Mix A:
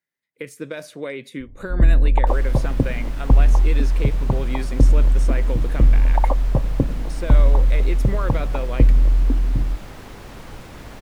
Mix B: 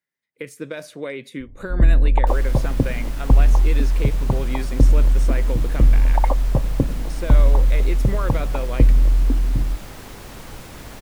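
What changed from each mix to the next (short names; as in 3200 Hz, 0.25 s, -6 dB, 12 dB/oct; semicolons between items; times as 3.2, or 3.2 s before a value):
second sound: add high shelf 5300 Hz +9 dB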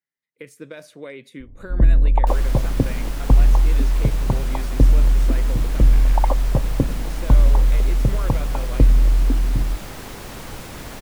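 speech -6.0 dB; second sound +3.5 dB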